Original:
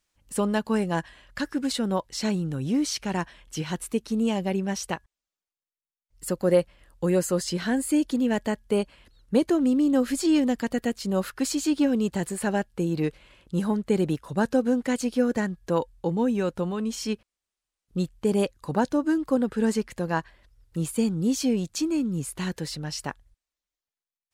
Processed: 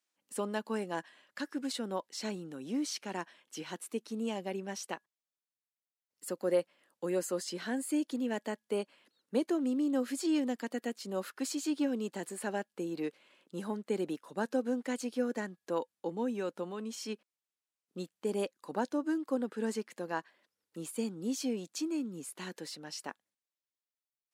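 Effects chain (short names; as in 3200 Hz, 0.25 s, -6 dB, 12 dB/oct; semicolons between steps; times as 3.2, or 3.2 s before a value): HPF 230 Hz 24 dB/oct; gain -8.5 dB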